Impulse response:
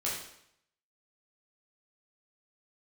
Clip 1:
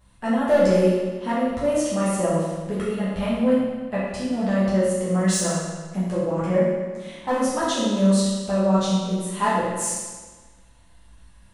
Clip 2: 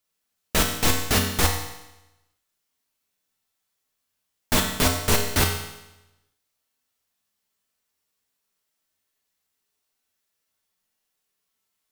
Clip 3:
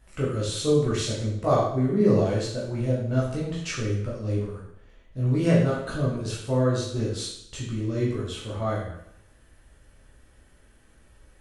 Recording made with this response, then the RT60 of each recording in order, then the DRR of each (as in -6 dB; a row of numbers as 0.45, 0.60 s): 3; 1.4, 0.95, 0.75 s; -10.5, 1.5, -6.5 dB